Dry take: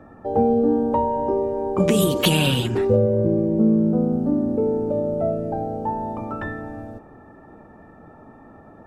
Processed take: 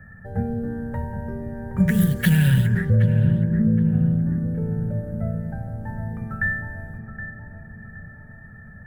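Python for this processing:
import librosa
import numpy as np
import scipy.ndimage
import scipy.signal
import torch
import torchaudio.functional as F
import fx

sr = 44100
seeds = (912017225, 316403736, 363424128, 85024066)

p1 = scipy.ndimage.median_filter(x, 5, mode='constant')
p2 = fx.curve_eq(p1, sr, hz=(140.0, 200.0, 290.0, 540.0, 1100.0, 1700.0, 2600.0, 4100.0, 6500.0, 11000.0), db=(0, -4, -27, -19, -24, 7, -19, -17, -14, -2))
p3 = p2 + fx.echo_filtered(p2, sr, ms=770, feedback_pct=55, hz=1100.0, wet_db=-7.5, dry=0)
y = F.gain(torch.from_numpy(p3), 6.5).numpy()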